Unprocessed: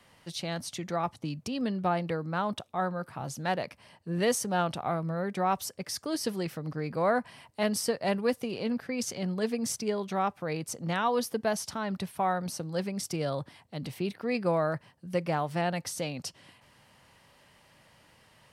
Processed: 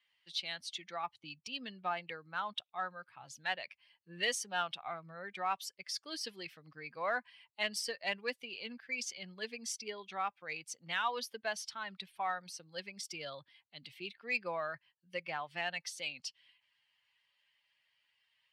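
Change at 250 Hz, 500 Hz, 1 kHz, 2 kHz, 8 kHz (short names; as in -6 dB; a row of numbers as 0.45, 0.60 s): -20.0, -13.0, -7.5, -0.5, -7.0 dB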